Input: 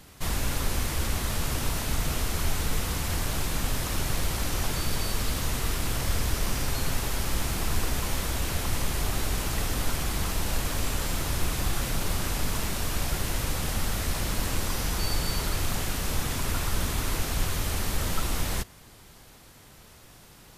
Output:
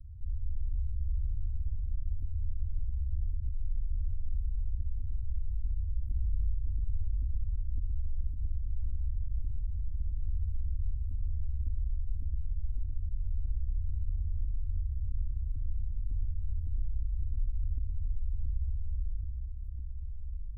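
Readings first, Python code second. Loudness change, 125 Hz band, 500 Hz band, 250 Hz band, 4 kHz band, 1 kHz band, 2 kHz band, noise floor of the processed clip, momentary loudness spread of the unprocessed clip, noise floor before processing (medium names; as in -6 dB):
-8.0 dB, -4.0 dB, under -40 dB, -26.0 dB, under -40 dB, under -40 dB, under -40 dB, -37 dBFS, 1 LU, -51 dBFS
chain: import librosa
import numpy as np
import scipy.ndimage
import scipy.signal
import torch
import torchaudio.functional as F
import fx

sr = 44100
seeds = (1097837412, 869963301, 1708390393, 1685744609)

y = scipy.signal.sosfilt(scipy.signal.cheby2(4, 80, [420.0, 4200.0], 'bandstop', fs=sr, output='sos'), x)
y = fx.high_shelf(y, sr, hz=5800.0, db=-10.0)
y = fx.room_flutter(y, sr, wall_m=10.6, rt60_s=0.93)
y = fx.filter_lfo_lowpass(y, sr, shape='saw_up', hz=1.8, low_hz=250.0, high_hz=4000.0, q=5.2)
y = fx.peak_eq(y, sr, hz=980.0, db=-10.0, octaves=1.7)
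y = fx.echo_alternate(y, sr, ms=671, hz=1200.0, feedback_pct=54, wet_db=-3.5)
y = fx.env_flatten(y, sr, amount_pct=50)
y = F.gain(torch.from_numpy(y), -8.0).numpy()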